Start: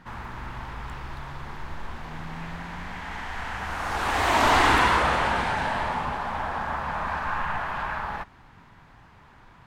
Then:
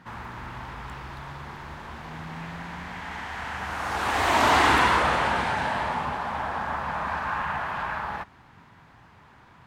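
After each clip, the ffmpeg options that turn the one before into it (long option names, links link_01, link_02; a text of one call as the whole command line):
ffmpeg -i in.wav -af "highpass=67" out.wav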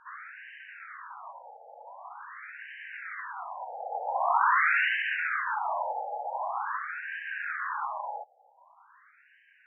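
ffmpeg -i in.wav -af "bandreject=frequency=890:width=22,afftfilt=real='re*between(b*sr/1024,610*pow(2200/610,0.5+0.5*sin(2*PI*0.45*pts/sr))/1.41,610*pow(2200/610,0.5+0.5*sin(2*PI*0.45*pts/sr))*1.41)':imag='im*between(b*sr/1024,610*pow(2200/610,0.5+0.5*sin(2*PI*0.45*pts/sr))/1.41,610*pow(2200/610,0.5+0.5*sin(2*PI*0.45*pts/sr))*1.41)':win_size=1024:overlap=0.75" out.wav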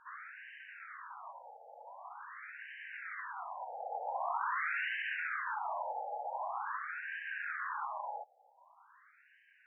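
ffmpeg -i in.wav -af "acompressor=threshold=-31dB:ratio=2.5,volume=-4.5dB" out.wav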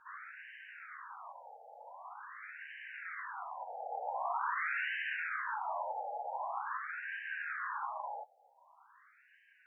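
ffmpeg -i in.wav -af "flanger=delay=8.7:depth=9.3:regen=-31:speed=0.84:shape=triangular,volume=3.5dB" out.wav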